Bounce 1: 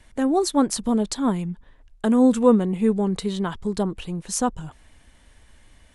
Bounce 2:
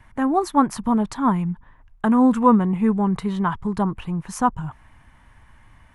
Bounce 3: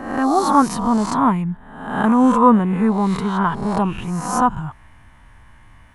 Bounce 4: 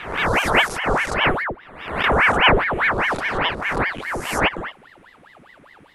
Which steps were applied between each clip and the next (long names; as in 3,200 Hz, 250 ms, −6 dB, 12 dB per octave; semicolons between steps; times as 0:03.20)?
octave-band graphic EQ 125/500/1,000/2,000/4,000/8,000 Hz +9/−7/+11/+3/−8/−9 dB
peak hold with a rise ahead of every peak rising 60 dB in 0.82 s; level +1.5 dB
ring modulator whose carrier an LFO sweeps 1,100 Hz, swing 85%, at 4.9 Hz